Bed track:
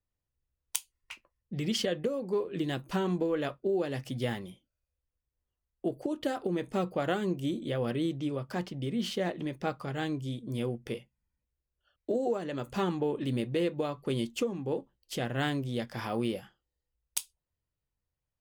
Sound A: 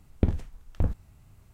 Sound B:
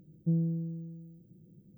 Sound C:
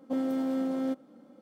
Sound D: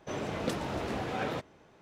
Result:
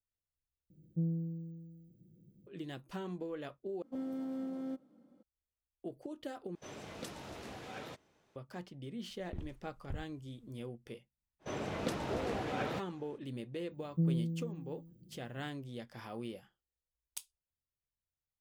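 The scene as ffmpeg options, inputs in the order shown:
ffmpeg -i bed.wav -i cue0.wav -i cue1.wav -i cue2.wav -i cue3.wav -filter_complex "[2:a]asplit=2[link_01][link_02];[4:a]asplit=2[link_03][link_04];[0:a]volume=-11.5dB[link_05];[3:a]lowshelf=frequency=210:gain=10.5[link_06];[link_03]highshelf=frequency=3200:gain=10[link_07];[1:a]alimiter=limit=-14dB:level=0:latency=1:release=43[link_08];[link_05]asplit=4[link_09][link_10][link_11][link_12];[link_09]atrim=end=0.704[link_13];[link_01]atrim=end=1.77,asetpts=PTS-STARTPTS,volume=-5.5dB[link_14];[link_10]atrim=start=2.466:end=3.824[link_15];[link_06]atrim=end=1.41,asetpts=PTS-STARTPTS,volume=-13.5dB[link_16];[link_11]atrim=start=5.226:end=6.554[link_17];[link_07]atrim=end=1.81,asetpts=PTS-STARTPTS,volume=-13.5dB[link_18];[link_12]atrim=start=8.356[link_19];[link_08]atrim=end=1.53,asetpts=PTS-STARTPTS,volume=-16dB,afade=type=in:duration=0.004:curve=hsin,afade=type=out:start_time=1.526:duration=0.004:curve=hsin,adelay=9100[link_20];[link_04]atrim=end=1.81,asetpts=PTS-STARTPTS,volume=-3.5dB,afade=type=in:duration=0.05,afade=type=out:start_time=1.76:duration=0.05,adelay=11390[link_21];[link_02]atrim=end=1.77,asetpts=PTS-STARTPTS,volume=-2.5dB,afade=type=in:duration=0.004:curve=hsin,afade=type=out:start_time=1.766:duration=0.004:curve=hsin,adelay=13710[link_22];[link_13][link_14]acrossfade=duration=0.004:curve1=hsin:curve2=hsin[link_23];[link_23][link_15]acrossfade=duration=0.004:curve1=hsin:curve2=hsin[link_24];[link_24][link_16]acrossfade=duration=0.004:curve1=hsin:curve2=hsin[link_25];[link_25][link_17]acrossfade=duration=0.004:curve1=hsin:curve2=hsin[link_26];[link_26][link_18]acrossfade=duration=0.004:curve1=hsin:curve2=hsin[link_27];[link_27][link_19]acrossfade=duration=0.004:curve1=hsin:curve2=hsin[link_28];[link_28][link_20][link_21][link_22]amix=inputs=4:normalize=0" out.wav

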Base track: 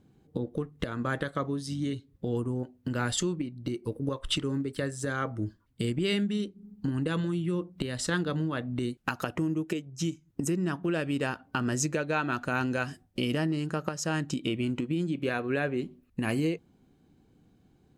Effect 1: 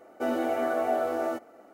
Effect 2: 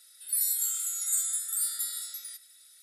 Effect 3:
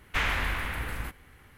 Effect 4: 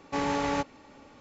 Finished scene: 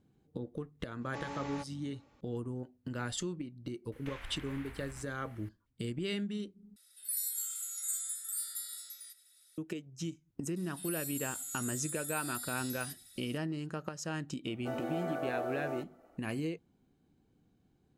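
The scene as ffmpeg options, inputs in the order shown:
ffmpeg -i bed.wav -i cue0.wav -i cue1.wav -i cue2.wav -i cue3.wav -filter_complex "[2:a]asplit=2[link_01][link_02];[0:a]volume=-8dB[link_03];[3:a]acompressor=threshold=-42dB:ratio=6:attack=3.2:release=140:knee=1:detection=peak[link_04];[link_02]acompressor=threshold=-37dB:ratio=6:attack=3.2:release=140:knee=1:detection=peak[link_05];[link_03]asplit=2[link_06][link_07];[link_06]atrim=end=6.764[link_08];[link_01]atrim=end=2.82,asetpts=PTS-STARTPTS,volume=-8dB[link_09];[link_07]atrim=start=9.576[link_10];[4:a]atrim=end=1.2,asetpts=PTS-STARTPTS,volume=-13.5dB,afade=type=in:duration=0.004:curve=hsin,afade=type=out:start_time=1.196:duration=0.004:curve=hsin,adelay=1010[link_11];[link_04]atrim=end=1.57,asetpts=PTS-STARTPTS,volume=-4.5dB,afade=type=in:duration=0.004:curve=hsin,afade=type=out:start_time=1.566:duration=0.004:curve=hsin,adelay=3920[link_12];[link_05]atrim=end=2.82,asetpts=PTS-STARTPTS,volume=-1.5dB,afade=type=in:duration=0.004:curve=hsin,afade=type=out:start_time=2.816:duration=0.004:curve=hsin,adelay=10560[link_13];[1:a]atrim=end=1.73,asetpts=PTS-STARTPTS,volume=-10dB,afade=type=in:duration=0.004:curve=hsin,afade=type=out:start_time=1.726:duration=0.004:curve=hsin,adelay=14450[link_14];[link_08][link_09]acrossfade=duration=0.004:curve1=hsin:curve2=hsin[link_15];[link_15][link_10]acrossfade=duration=0.004:curve1=hsin:curve2=hsin[link_16];[link_16][link_11][link_12][link_13][link_14]amix=inputs=5:normalize=0" out.wav

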